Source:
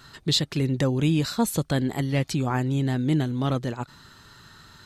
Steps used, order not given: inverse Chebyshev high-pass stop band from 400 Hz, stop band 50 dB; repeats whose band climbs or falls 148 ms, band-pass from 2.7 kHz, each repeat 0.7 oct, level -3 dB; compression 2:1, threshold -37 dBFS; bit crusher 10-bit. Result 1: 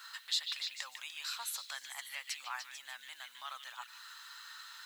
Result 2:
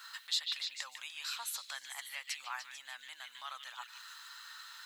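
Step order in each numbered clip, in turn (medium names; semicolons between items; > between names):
compression > repeats whose band climbs or falls > bit crusher > inverse Chebyshev high-pass; repeats whose band climbs or falls > bit crusher > compression > inverse Chebyshev high-pass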